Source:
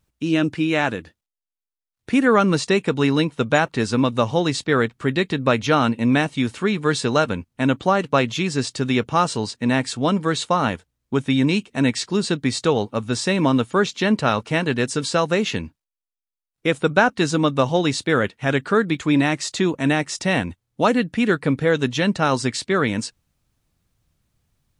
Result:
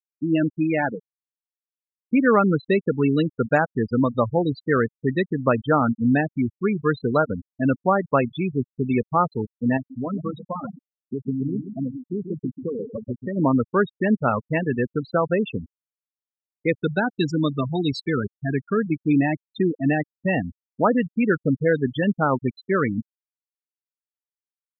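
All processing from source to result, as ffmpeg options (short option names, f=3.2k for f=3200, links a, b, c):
-filter_complex "[0:a]asettb=1/sr,asplit=3[a][b][c];[a]atrim=end=9.774[d];[b]atrim=start=9.77:end=13.37,asetpts=PTS-STARTPTS,afade=t=in:d=0.004:c=qsin,afade=t=out:st=3.596:d=0.004:c=qsin,lowpass=3.5k,acompressor=threshold=-21dB:ratio=6:attack=3.2:release=140:knee=1:detection=peak,aecho=1:1:135|270|405|540|675|810:0.501|0.261|0.136|0.0705|0.0366|0.0191,atrim=end_sample=158760[e];[c]atrim=start=13.366[f];[d][e]acrossfade=d=0.004:c1=hsin:c2=qsin[g];[g][f]acrossfade=d=0.004:c1=qsin:c2=hsin,asettb=1/sr,asplit=3[h][i][j];[h]atrim=end=16.734[k];[i]atrim=start=16.73:end=18.86,asetpts=PTS-STARTPTS,afade=t=in:d=0.004:c=qsin,afade=t=out:st=2.126:d=0.004:c=qsin,highshelf=f=2.8k:g=7.5,acrossover=split=420|3000[l][m][n];[m]acompressor=threshold=-33dB:ratio=1.5:attack=3.2:release=140:knee=2.83:detection=peak[o];[l][o][n]amix=inputs=3:normalize=0,bandreject=f=530:w=6.7[p];[j]atrim=start=18.856[q];[k][p]acrossfade=d=0.004:c1=hsin:c2=qsin[r];[r][q]acrossfade=d=0.004:c1=qsin:c2=hsin,afftfilt=real='re*gte(hypot(re,im),0.224)':imag='im*gte(hypot(re,im),0.224)':win_size=1024:overlap=0.75,lowpass=3.7k,volume=-1dB"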